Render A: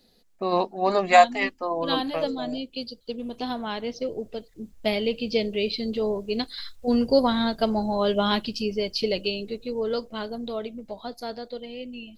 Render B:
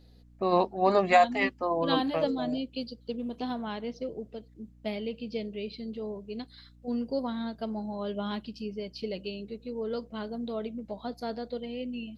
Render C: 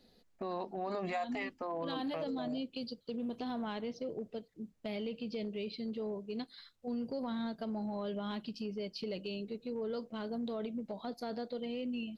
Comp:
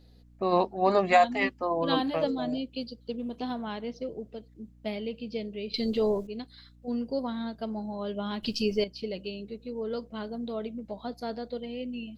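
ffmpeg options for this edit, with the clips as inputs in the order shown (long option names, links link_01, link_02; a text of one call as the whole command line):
ffmpeg -i take0.wav -i take1.wav -filter_complex "[0:a]asplit=2[link_01][link_02];[1:a]asplit=3[link_03][link_04][link_05];[link_03]atrim=end=5.742[link_06];[link_01]atrim=start=5.738:end=6.272[link_07];[link_04]atrim=start=6.268:end=8.432[link_08];[link_02]atrim=start=8.428:end=8.842[link_09];[link_05]atrim=start=8.838[link_10];[link_06][link_07]acrossfade=duration=0.004:curve1=hsin:curve2=hsin[link_11];[link_11][link_08]acrossfade=duration=0.004:curve1=hsin:curve2=hsin[link_12];[link_12][link_09]acrossfade=duration=0.004:curve1=hsin:curve2=hsin[link_13];[link_13][link_10]acrossfade=duration=0.004:curve1=hsin:curve2=hsin" out.wav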